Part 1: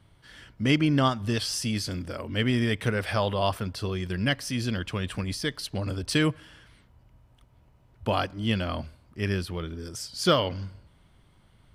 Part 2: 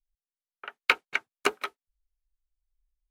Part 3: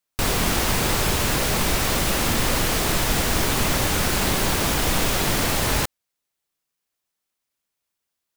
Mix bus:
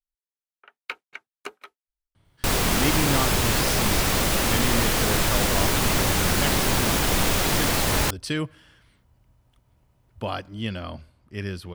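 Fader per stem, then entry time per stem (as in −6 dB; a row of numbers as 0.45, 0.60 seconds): −3.5, −11.5, −0.5 decibels; 2.15, 0.00, 2.25 seconds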